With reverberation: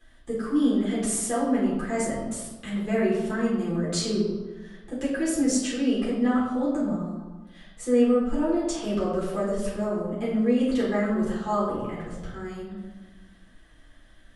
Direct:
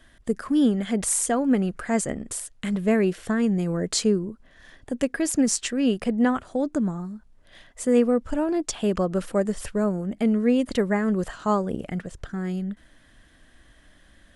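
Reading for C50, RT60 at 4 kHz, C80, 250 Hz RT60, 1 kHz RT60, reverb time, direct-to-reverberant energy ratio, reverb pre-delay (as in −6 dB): 1.5 dB, 0.80 s, 4.0 dB, 1.4 s, 1.2 s, 1.3 s, −8.0 dB, 6 ms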